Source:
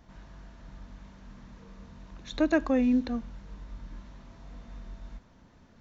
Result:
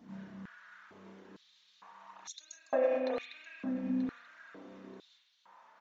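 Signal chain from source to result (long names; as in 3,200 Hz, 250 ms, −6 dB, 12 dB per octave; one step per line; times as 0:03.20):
reverb reduction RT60 1.2 s
spring reverb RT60 1.1 s, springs 31 ms, chirp 75 ms, DRR −4.5 dB
brickwall limiter −20 dBFS, peak gain reduction 10.5 dB
flanger 0.46 Hz, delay 0.2 ms, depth 8.8 ms, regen −53%
repeating echo 934 ms, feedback 18%, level −12.5 dB
high-pass on a step sequencer 2.2 Hz 220–6,200 Hz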